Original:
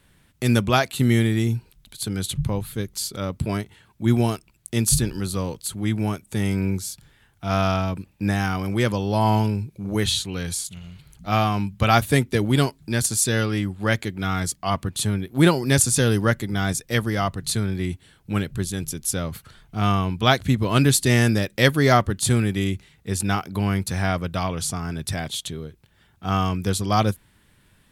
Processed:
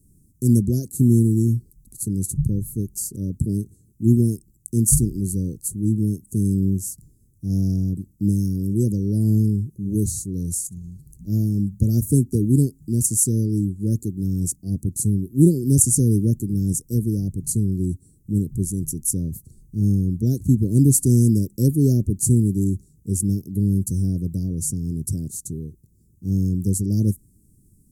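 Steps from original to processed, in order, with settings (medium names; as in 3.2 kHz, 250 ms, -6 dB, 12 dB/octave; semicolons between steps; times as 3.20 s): inverse Chebyshev band-stop 750–3400 Hz, stop band 50 dB; trim +3.5 dB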